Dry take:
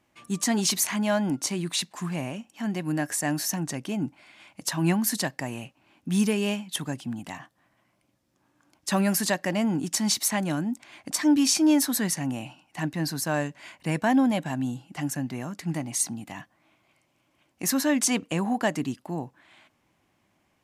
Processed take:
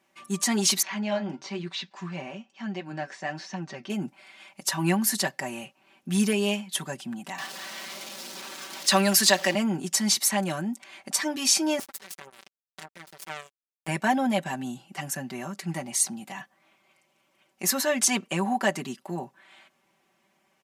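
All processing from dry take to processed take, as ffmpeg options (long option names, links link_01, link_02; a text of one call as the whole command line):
ffmpeg -i in.wav -filter_complex "[0:a]asettb=1/sr,asplit=3[link_01][link_02][link_03];[link_01]atrim=end=0.824[link_04];[link_02]atrim=start=0.82:end=3.9,asetpts=PTS-STARTPTS,afade=type=in:duration=0.004:curve=qsin,afade=type=out:start_time=3.076:duration=0.004:curve=qsin,acrossover=split=4300[link_05][link_06];[link_06]acompressor=threshold=-39dB:ratio=4:attack=1:release=60[link_07];[link_05][link_07]amix=inputs=2:normalize=0,lowpass=frequency=5600:width=0.5412,lowpass=frequency=5600:width=1.3066,flanger=delay=5.4:depth=8:regen=-59:speed=1.1:shape=triangular[link_08];[link_03]atrim=start=3.896[link_09];[link_04][link_08]acrossfade=duration=0.004:curve1=hsin:curve2=qsin[link_10];[link_10][link_09]acrossfade=duration=0.004:curve1=qsin:curve2=hsin,asettb=1/sr,asplit=3[link_11][link_12][link_13];[link_11]atrim=end=7.384[link_14];[link_12]atrim=start=7.38:end=9.55,asetpts=PTS-STARTPTS,afade=type=in:duration=0.004:curve=qsin,afade=type=out:start_time=2.166:duration=0.004:curve=qsin,aeval=exprs='val(0)+0.5*0.0133*sgn(val(0))':channel_layout=same,highpass=frequency=180:width=0.5412,highpass=frequency=180:width=1.3066,equalizer=frequency=4300:width_type=o:width=1.8:gain=8.5[link_15];[link_13]atrim=start=9.546[link_16];[link_14][link_15]acrossfade=duration=0.004:curve1=hsin:curve2=qsin[link_17];[link_17][link_16]acrossfade=duration=0.004:curve1=qsin:curve2=hsin,asettb=1/sr,asplit=3[link_18][link_19][link_20];[link_18]atrim=end=11.794[link_21];[link_19]atrim=start=11.79:end=13.88,asetpts=PTS-STARTPTS,afade=type=in:duration=0.004:curve=qsin,afade=type=out:start_time=2.086:duration=0.004:curve=qsin,aecho=1:1:6.7:0.89,atrim=end_sample=92169,acompressor=threshold=-29dB:ratio=6:attack=3.2:release=140:knee=1:detection=peak,acrusher=bits=3:mix=0:aa=0.5[link_22];[link_20]atrim=start=13.876[link_23];[link_21][link_22]acrossfade=duration=0.004:curve1=hsin:curve2=qsin[link_24];[link_24][link_23]acrossfade=duration=0.004:curve1=qsin:curve2=hsin,highpass=frequency=330:poles=1,aecho=1:1:5.2:0.84" out.wav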